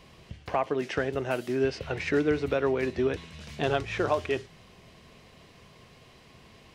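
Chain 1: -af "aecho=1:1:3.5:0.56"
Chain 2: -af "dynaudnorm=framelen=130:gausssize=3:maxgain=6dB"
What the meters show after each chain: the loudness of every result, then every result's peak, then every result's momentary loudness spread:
−28.5, −23.0 LKFS; −12.0, −7.0 dBFS; 8, 6 LU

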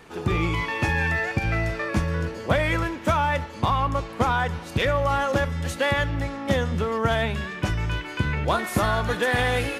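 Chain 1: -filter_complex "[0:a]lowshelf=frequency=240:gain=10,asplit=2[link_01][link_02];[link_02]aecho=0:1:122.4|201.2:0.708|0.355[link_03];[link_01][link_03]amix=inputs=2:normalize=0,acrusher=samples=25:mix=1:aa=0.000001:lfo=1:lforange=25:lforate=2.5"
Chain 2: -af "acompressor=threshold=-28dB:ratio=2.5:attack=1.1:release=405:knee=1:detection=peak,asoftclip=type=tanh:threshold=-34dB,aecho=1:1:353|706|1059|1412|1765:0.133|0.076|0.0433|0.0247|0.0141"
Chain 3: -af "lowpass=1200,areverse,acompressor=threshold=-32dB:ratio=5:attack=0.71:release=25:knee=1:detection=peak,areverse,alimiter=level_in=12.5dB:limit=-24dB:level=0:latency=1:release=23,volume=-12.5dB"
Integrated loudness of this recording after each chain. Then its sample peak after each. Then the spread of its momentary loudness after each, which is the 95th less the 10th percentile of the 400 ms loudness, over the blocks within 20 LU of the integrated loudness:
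−18.0, −37.5, −43.5 LKFS; −2.5, −32.0, −36.5 dBFS; 3, 2, 1 LU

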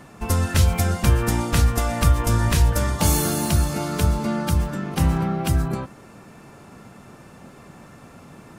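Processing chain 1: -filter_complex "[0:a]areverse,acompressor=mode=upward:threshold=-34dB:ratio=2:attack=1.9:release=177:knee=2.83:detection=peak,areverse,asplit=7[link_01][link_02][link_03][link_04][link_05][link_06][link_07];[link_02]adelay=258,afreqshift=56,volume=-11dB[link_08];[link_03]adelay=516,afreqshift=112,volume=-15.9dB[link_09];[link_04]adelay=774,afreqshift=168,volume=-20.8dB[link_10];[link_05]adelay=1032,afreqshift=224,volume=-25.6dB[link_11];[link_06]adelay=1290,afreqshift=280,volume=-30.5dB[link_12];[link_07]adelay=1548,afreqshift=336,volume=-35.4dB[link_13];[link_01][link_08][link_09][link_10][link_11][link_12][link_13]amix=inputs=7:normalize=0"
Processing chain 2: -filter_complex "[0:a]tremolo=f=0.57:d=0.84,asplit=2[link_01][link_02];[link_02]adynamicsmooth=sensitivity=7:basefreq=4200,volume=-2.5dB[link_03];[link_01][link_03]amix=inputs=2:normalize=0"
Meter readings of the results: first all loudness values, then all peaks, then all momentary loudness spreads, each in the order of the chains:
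−21.0, −21.0 LKFS; −5.5, −3.5 dBFS; 14, 13 LU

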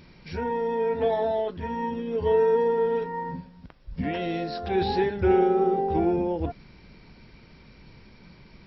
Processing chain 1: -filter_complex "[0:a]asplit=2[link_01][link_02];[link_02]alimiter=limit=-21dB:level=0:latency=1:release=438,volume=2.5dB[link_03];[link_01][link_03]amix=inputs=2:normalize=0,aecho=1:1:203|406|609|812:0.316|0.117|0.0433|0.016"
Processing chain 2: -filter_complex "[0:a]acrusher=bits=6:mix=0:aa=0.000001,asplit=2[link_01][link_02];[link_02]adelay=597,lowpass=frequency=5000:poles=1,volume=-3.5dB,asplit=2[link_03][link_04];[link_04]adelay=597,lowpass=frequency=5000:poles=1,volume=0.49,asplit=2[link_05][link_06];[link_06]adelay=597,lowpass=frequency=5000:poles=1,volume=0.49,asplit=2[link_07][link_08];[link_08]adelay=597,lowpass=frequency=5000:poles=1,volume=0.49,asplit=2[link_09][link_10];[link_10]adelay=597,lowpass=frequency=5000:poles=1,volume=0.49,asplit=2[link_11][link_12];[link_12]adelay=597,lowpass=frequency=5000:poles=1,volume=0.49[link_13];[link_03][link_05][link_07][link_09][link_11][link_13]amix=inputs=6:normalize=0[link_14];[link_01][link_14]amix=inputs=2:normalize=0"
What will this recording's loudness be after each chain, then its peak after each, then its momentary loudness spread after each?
−20.5, −24.0 LKFS; −6.5, −8.5 dBFS; 12, 16 LU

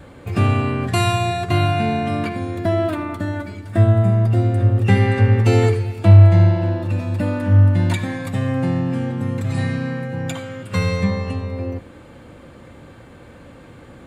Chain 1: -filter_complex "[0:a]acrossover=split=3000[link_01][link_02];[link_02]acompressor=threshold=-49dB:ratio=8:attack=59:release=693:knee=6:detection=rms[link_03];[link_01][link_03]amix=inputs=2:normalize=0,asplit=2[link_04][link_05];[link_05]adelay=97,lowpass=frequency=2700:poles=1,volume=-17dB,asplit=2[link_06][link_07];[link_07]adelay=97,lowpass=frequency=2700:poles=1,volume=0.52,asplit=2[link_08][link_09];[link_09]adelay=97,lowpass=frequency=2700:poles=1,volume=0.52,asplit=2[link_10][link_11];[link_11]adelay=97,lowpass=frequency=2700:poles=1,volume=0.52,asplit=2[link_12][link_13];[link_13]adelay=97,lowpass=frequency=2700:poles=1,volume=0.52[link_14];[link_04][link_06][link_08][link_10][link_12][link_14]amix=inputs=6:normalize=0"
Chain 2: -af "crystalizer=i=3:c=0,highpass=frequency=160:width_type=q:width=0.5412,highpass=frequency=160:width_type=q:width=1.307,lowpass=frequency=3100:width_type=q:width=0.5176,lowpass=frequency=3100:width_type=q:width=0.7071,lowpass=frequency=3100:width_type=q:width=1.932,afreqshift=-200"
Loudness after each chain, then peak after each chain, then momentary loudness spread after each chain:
−18.5, −24.0 LKFS; −1.5, −6.0 dBFS; 12, 9 LU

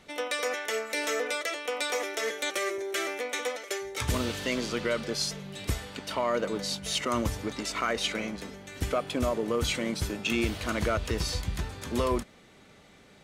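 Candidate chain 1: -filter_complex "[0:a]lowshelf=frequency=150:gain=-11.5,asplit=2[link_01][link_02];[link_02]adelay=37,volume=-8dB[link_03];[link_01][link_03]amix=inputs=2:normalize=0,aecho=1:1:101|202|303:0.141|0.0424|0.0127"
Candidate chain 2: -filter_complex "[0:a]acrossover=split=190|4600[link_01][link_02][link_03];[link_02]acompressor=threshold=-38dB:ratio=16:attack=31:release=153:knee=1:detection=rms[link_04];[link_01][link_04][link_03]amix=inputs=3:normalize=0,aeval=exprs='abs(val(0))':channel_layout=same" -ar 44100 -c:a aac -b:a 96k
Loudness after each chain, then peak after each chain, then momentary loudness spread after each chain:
−31.0, −39.5 LKFS; −16.5, −17.5 dBFS; 7, 6 LU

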